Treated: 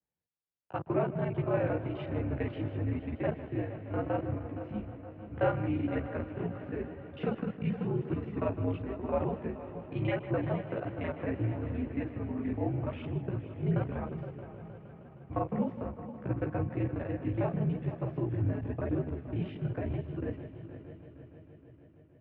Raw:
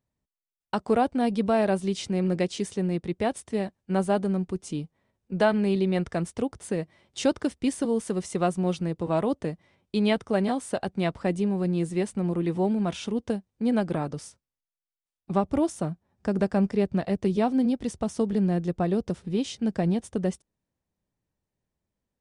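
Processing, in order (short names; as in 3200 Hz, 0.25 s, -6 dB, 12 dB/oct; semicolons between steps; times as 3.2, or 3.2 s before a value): local time reversal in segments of 32 ms; mistuned SSB -89 Hz 180–2700 Hz; on a send: multi-head echo 0.156 s, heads first and third, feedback 69%, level -13.5 dB; on the sum: chorus voices 2, 0.92 Hz, delay 16 ms, depth 3.4 ms; gain -3 dB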